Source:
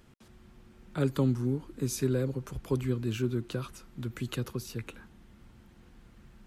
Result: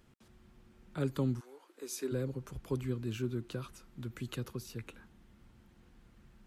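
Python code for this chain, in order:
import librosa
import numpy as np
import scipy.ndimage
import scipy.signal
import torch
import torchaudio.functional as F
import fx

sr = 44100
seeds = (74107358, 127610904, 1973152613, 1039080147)

y = fx.highpass(x, sr, hz=fx.line((1.39, 680.0), (2.11, 260.0)), slope=24, at=(1.39, 2.11), fade=0.02)
y = y * librosa.db_to_amplitude(-5.5)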